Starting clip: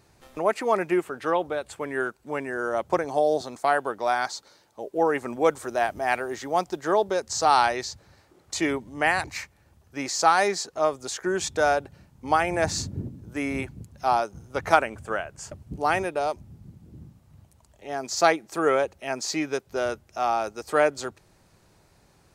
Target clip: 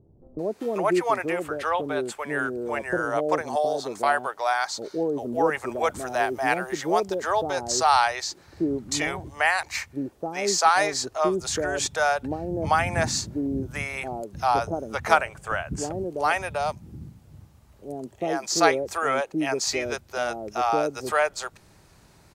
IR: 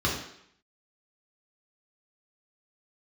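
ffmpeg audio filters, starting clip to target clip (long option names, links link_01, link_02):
-filter_complex "[0:a]asplit=2[link_01][link_02];[link_02]acompressor=threshold=-30dB:ratio=6,volume=-2dB[link_03];[link_01][link_03]amix=inputs=2:normalize=0,acrossover=split=530[link_04][link_05];[link_05]adelay=390[link_06];[link_04][link_06]amix=inputs=2:normalize=0"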